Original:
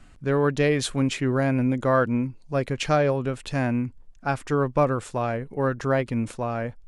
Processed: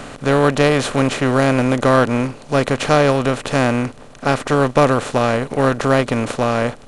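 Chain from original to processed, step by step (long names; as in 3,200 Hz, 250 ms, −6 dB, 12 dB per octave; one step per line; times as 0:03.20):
compressor on every frequency bin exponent 0.4
expander for the loud parts 1.5 to 1, over −34 dBFS
level +5 dB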